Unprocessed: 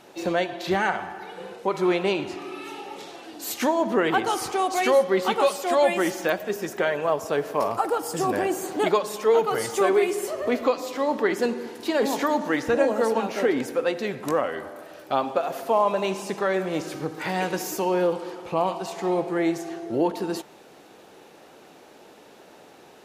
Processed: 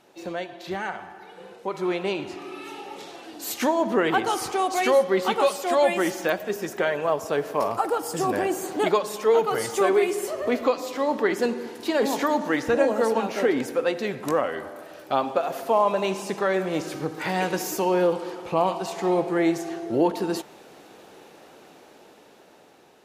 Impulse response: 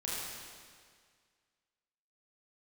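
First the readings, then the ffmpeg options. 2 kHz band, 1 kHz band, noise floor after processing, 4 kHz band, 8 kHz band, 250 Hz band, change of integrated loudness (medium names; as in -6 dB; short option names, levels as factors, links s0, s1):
-0.5 dB, 0.0 dB, -51 dBFS, -0.5 dB, 0.0 dB, 0.0 dB, 0.0 dB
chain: -af "dynaudnorm=f=640:g=7:m=3.76,volume=0.422"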